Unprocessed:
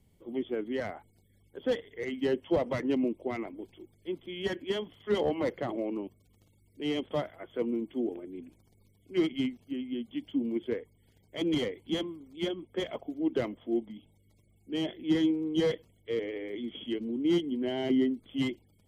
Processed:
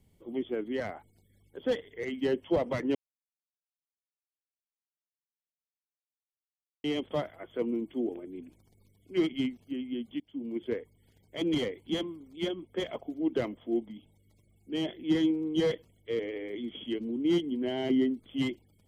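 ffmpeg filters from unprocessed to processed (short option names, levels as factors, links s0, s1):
-filter_complex "[0:a]asplit=4[s0][s1][s2][s3];[s0]atrim=end=2.95,asetpts=PTS-STARTPTS,afade=t=out:st=2.946:d=0.004:c=hsin[s4];[s1]atrim=start=2.95:end=6.84,asetpts=PTS-STARTPTS,volume=0[s5];[s2]atrim=start=6.84:end=10.2,asetpts=PTS-STARTPTS,afade=t=in:d=0.004:c=hsin,afade=t=out:st=3.356:d=0.004:c=hsin:silence=0.0841395[s6];[s3]atrim=start=10.2,asetpts=PTS-STARTPTS,afade=t=in:d=0.51:silence=0.0841395[s7];[s4][s5][s6][s7]concat=n=4:v=0:a=1"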